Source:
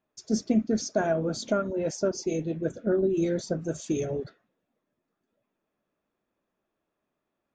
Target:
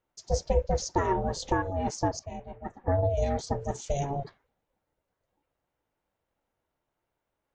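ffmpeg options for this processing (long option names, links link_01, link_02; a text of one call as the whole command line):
ffmpeg -i in.wav -filter_complex "[0:a]asettb=1/sr,asplit=3[link_01][link_02][link_03];[link_01]atrim=end=2.194[link_04];[link_02]atrim=start=2.19:end=2.88,asetpts=PTS-STARTPTS,afade=type=in:duration=0.004:curve=qsin,afade=type=out:start_time=0.686:duration=0.004:curve=qsin,acrossover=split=560 2000:gain=0.178 1 0.112[link_05][link_06][link_07];[link_05][link_06][link_07]amix=inputs=3:normalize=0[link_08];[link_03]atrim=start=2.876[link_09];[link_04][link_08]acrossfade=duration=0.004:curve1=hsin:curve2=qsin[link_10];[link_10][link_09]acrossfade=duration=0.004:curve1=qsin:curve2=hsin,aeval=exprs='val(0)*sin(2*PI*280*n/s)':channel_layout=same,volume=2dB" out.wav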